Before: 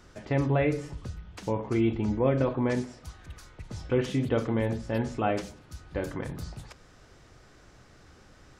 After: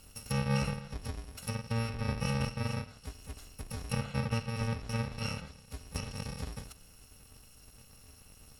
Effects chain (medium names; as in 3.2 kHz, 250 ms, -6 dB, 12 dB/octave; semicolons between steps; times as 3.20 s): bit-reversed sample order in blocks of 128 samples; low-pass that closes with the level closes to 2.9 kHz, closed at -26 dBFS